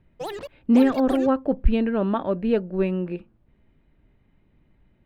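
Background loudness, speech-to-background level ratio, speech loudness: -35.5 LUFS, 13.0 dB, -22.5 LUFS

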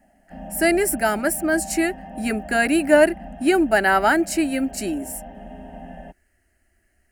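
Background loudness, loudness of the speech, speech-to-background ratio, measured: -38.0 LUFS, -20.5 LUFS, 17.5 dB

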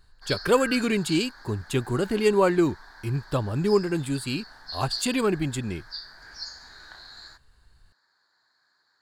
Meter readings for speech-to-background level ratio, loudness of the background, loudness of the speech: 14.0 dB, -39.5 LUFS, -25.5 LUFS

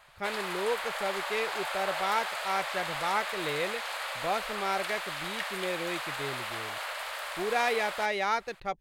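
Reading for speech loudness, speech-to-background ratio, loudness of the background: -33.0 LUFS, 1.5 dB, -34.5 LUFS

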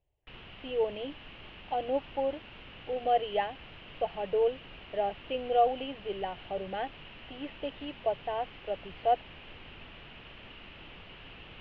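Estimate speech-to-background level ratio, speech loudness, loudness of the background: 15.5 dB, -33.0 LUFS, -48.5 LUFS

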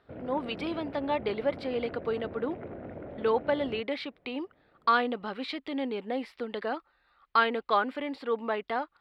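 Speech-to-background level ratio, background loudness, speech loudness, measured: 11.5 dB, -43.0 LUFS, -31.5 LUFS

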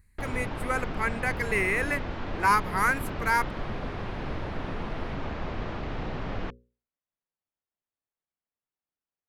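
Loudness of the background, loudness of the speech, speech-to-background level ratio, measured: -35.5 LUFS, -28.0 LUFS, 7.5 dB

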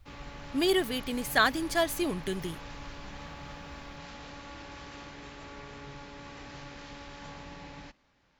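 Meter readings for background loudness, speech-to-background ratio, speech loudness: -45.0 LUFS, 16.0 dB, -29.0 LUFS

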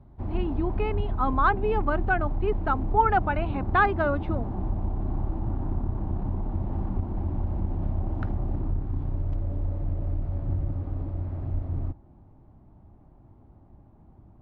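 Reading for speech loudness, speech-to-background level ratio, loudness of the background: -27.0 LUFS, 4.5 dB, -31.5 LUFS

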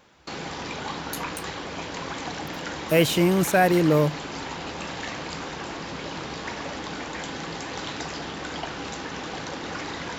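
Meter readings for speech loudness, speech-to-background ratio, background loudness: -21.0 LUFS, 12.0 dB, -33.0 LUFS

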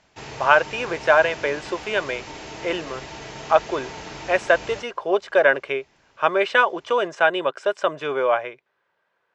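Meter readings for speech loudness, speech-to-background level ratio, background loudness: -21.5 LUFS, 15.0 dB, -36.5 LUFS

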